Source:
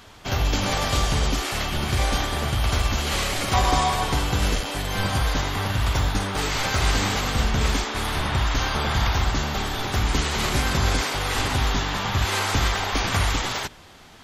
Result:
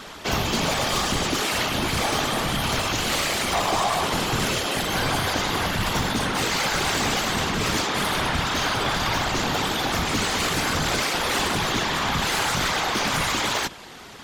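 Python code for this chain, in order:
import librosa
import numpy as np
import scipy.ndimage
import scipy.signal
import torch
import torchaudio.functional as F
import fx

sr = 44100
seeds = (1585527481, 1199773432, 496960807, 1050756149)

p1 = scipy.signal.sosfilt(scipy.signal.butter(2, 130.0, 'highpass', fs=sr, output='sos'), x)
p2 = fx.rider(p1, sr, range_db=10, speed_s=0.5)
p3 = p1 + (p2 * 10.0 ** (0.0 / 20.0))
p4 = 10.0 ** (-19.5 / 20.0) * np.tanh(p3 / 10.0 ** (-19.5 / 20.0))
y = fx.whisperise(p4, sr, seeds[0])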